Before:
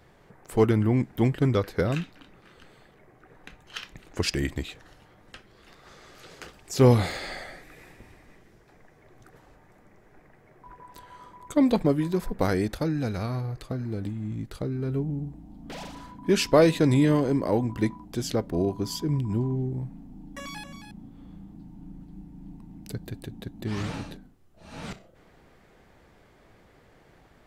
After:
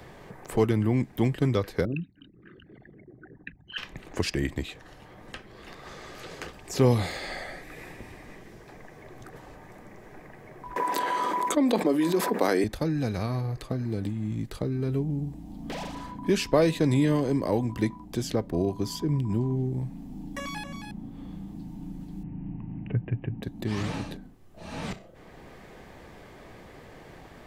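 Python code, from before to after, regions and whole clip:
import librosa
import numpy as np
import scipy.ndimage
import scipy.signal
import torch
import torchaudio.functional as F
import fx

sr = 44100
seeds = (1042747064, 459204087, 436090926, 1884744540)

y = fx.chain(x, sr, fx.envelope_sharpen(power=3.0),
    fx.highpass(hz=180.0, slope=6),
    fx.band_shelf(hz=730.0, db=-10.5, octaves=1.7), at=(1.85, 3.78))
y = fx.chain(y, sr, fx.highpass(hz=260.0, slope=24),
    fx.env_flatten(amount_pct=70), at=(10.76, 12.64))
y = fx.chain(y, sr, fx.steep_lowpass(hz=2900.0, slope=96),
    fx.peak_eq(hz=120.0, db=11.5, octaves=0.6), at=(22.23, 23.43))
y = fx.notch(y, sr, hz=1400.0, q=11.0)
y = fx.band_squash(y, sr, depth_pct=40)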